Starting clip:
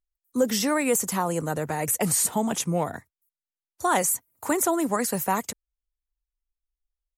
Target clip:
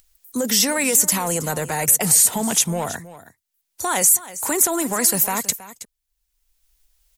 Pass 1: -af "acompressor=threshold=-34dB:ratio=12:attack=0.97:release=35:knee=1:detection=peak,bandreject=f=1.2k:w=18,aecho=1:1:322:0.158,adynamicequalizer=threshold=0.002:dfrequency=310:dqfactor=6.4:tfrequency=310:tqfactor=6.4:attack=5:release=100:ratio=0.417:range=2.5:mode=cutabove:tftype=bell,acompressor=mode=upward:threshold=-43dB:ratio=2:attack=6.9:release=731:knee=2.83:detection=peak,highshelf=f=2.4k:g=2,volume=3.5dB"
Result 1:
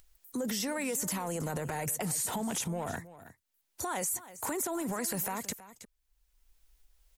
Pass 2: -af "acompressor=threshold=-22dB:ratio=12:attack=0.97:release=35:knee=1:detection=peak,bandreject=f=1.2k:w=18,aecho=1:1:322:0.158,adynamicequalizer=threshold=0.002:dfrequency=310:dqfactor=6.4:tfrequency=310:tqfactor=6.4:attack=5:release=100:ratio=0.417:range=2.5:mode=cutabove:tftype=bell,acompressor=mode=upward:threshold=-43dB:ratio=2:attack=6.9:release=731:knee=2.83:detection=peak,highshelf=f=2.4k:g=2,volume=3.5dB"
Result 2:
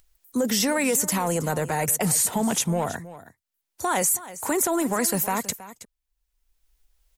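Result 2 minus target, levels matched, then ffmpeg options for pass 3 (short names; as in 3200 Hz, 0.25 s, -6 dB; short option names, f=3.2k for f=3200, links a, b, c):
2000 Hz band +3.0 dB
-af "acompressor=threshold=-22dB:ratio=12:attack=0.97:release=35:knee=1:detection=peak,bandreject=f=1.2k:w=18,aecho=1:1:322:0.158,adynamicequalizer=threshold=0.002:dfrequency=310:dqfactor=6.4:tfrequency=310:tqfactor=6.4:attack=5:release=100:ratio=0.417:range=2.5:mode=cutabove:tftype=bell,acompressor=mode=upward:threshold=-43dB:ratio=2:attack=6.9:release=731:knee=2.83:detection=peak,highshelf=f=2.4k:g=10.5,volume=3.5dB"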